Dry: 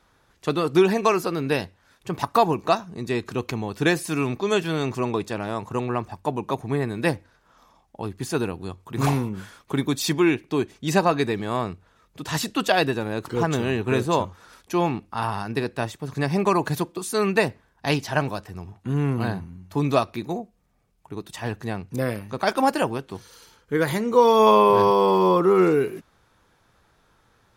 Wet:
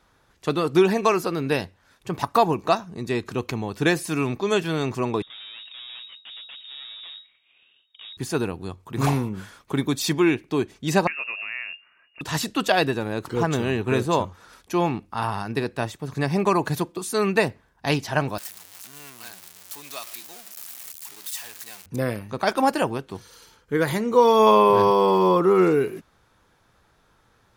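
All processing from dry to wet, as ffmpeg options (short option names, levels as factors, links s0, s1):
-filter_complex "[0:a]asettb=1/sr,asplit=3[s0][s1][s2];[s0]atrim=end=5.224[s3];[s1]atrim=start=5.22:end=8.17,asetpts=PTS-STARTPTS,afade=t=in:d=0.004:c=qsin,afade=t=out:st=2.946:d=0.004:c=qsin,deesser=0.95,aeval=exprs='(tanh(100*val(0)+0.65)-tanh(0.65))/100':c=same,lowpass=f=3200:t=q:w=0.5098,lowpass=f=3200:t=q:w=0.6013,lowpass=f=3200:t=q:w=0.9,lowpass=f=3200:t=q:w=2.563,afreqshift=-3800[s4];[s2]atrim=start=8.166[s5];[s3][s4]acrossfade=d=0.004:c1=hsin:c2=qsin[s6];[s6][s5]acrossfade=d=0.004:c1=qsin:c2=hsin,asettb=1/sr,asplit=3[s7][s8][s9];[s7]atrim=end=11.074[s10];[s8]atrim=start=11.07:end=12.21,asetpts=PTS-STARTPTS,afade=t=in:d=0.004:c=qsin,afade=t=out:st=1.136:d=0.004:c=qsin,acompressor=threshold=0.0355:ratio=3:attack=3.2:release=140:knee=1:detection=peak,lowpass=f=2500:t=q:w=0.5098,lowpass=f=2500:t=q:w=0.6013,lowpass=f=2500:t=q:w=0.9,lowpass=f=2500:t=q:w=2.563,afreqshift=-2900[s11];[s9]atrim=start=12.206[s12];[s10][s11]acrossfade=d=0.004:c1=hsin:c2=qsin[s13];[s13][s12]acrossfade=d=0.004:c1=qsin:c2=hsin,asettb=1/sr,asplit=3[s14][s15][s16];[s14]atrim=end=18.384[s17];[s15]atrim=start=18.38:end=21.86,asetpts=PTS-STARTPTS,afade=t=in:d=0.004:c=qsin,afade=t=out:st=3.476:d=0.004:c=qsin,aeval=exprs='val(0)+0.5*0.0501*sgn(val(0))':c=same,highpass=56,aderivative[s18];[s16]atrim=start=21.856[s19];[s17][s18]acrossfade=d=0.004:c1=hsin:c2=qsin[s20];[s20][s19]acrossfade=d=0.004:c1=qsin:c2=hsin"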